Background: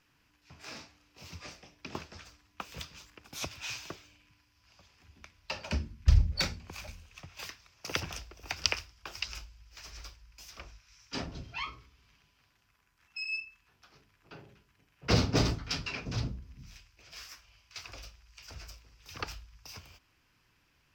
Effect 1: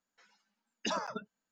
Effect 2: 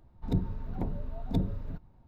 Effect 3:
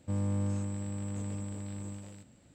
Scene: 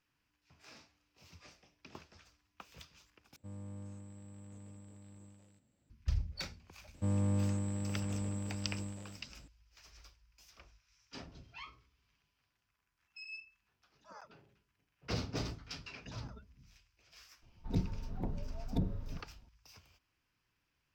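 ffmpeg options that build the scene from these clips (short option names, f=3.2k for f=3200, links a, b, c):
-filter_complex "[3:a]asplit=2[a][b];[1:a]asplit=2[c][d];[0:a]volume=-11.5dB[e];[c]aeval=exprs='val(0)*pow(10,-39*(0.5-0.5*cos(2*PI*1.9*n/s))/20)':c=same[f];[d]acompressor=threshold=-54dB:ratio=2.5:attack=95:release=47:knee=1:detection=rms[g];[e]asplit=2[h][i];[h]atrim=end=3.364[j];[a]atrim=end=2.54,asetpts=PTS-STARTPTS,volume=-15.5dB[k];[i]atrim=start=5.896[l];[b]atrim=end=2.54,asetpts=PTS-STARTPTS,volume=-0.5dB,afade=t=in:d=0.004:c=hsin,afade=t=out:st=2.536:d=0.004:c=hsin,adelay=6940[m];[f]atrim=end=1.51,asetpts=PTS-STARTPTS,volume=-11dB,afade=t=in:d=0.004:c=hsin,afade=t=out:st=1.506:d=0.004:c=hsin,adelay=13140[n];[g]atrim=end=1.51,asetpts=PTS-STARTPTS,volume=-10dB,afade=t=in:d=0.004:c=hsin,afade=t=out:st=1.506:d=0.004:c=hsin,adelay=15210[o];[2:a]atrim=end=2.07,asetpts=PTS-STARTPTS,volume=-5dB,afade=t=in:d=0.004:c=hsin,afade=t=out:st=2.066:d=0.004:c=hsin,adelay=17420[p];[j][k]acrossfade=d=0.004:c1=hsin:c2=hsin[q];[q][l]acrossfade=d=0.004:c1=hsin:c2=hsin[r];[r][m][n][o][p]amix=inputs=5:normalize=0"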